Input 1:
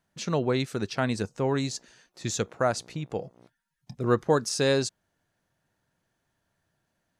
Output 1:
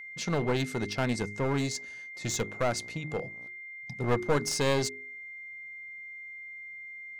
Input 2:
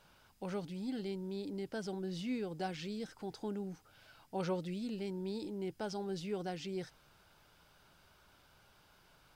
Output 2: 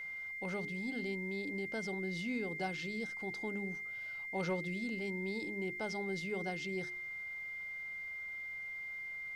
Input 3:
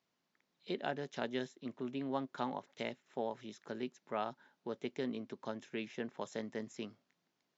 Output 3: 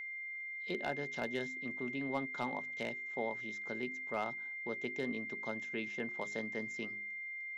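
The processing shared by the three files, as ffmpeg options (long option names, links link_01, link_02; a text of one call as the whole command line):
ffmpeg -i in.wav -af "bandreject=frequency=51.49:width_type=h:width=4,bandreject=frequency=102.98:width_type=h:width=4,bandreject=frequency=154.47:width_type=h:width=4,bandreject=frequency=205.96:width_type=h:width=4,bandreject=frequency=257.45:width_type=h:width=4,bandreject=frequency=308.94:width_type=h:width=4,bandreject=frequency=360.43:width_type=h:width=4,bandreject=frequency=411.92:width_type=h:width=4,aeval=exprs='clip(val(0),-1,0.0376)':channel_layout=same,aeval=exprs='val(0)+0.00891*sin(2*PI*2100*n/s)':channel_layout=same" out.wav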